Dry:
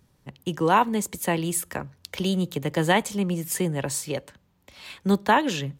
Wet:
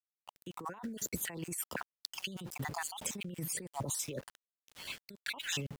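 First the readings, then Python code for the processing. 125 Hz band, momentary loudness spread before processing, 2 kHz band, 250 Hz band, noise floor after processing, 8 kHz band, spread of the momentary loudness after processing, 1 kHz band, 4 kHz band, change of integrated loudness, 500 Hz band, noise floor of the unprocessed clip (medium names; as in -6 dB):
-15.0 dB, 14 LU, -13.0 dB, -19.0 dB, under -85 dBFS, -7.0 dB, 11 LU, -20.5 dB, -9.0 dB, -14.5 dB, -20.0 dB, -65 dBFS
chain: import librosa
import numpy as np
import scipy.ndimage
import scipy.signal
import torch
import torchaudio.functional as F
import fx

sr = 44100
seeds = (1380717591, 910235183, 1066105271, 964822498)

y = fx.spec_dropout(x, sr, seeds[0], share_pct=45)
y = np.where(np.abs(y) >= 10.0 ** (-46.0 / 20.0), y, 0.0)
y = fx.over_compress(y, sr, threshold_db=-34.0, ratio=-1.0)
y = y * librosa.db_to_amplitude(-6.5)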